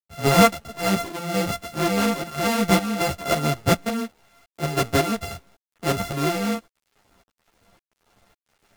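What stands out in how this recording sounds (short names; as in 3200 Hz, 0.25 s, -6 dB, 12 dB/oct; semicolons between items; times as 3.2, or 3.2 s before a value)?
a buzz of ramps at a fixed pitch in blocks of 64 samples; tremolo saw up 1.8 Hz, depth 70%; a quantiser's noise floor 10-bit, dither none; a shimmering, thickened sound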